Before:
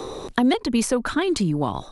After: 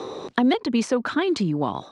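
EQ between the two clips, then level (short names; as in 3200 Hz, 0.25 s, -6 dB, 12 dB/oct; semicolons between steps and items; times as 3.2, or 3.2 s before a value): BPF 150–6800 Hz; air absorption 52 m; 0.0 dB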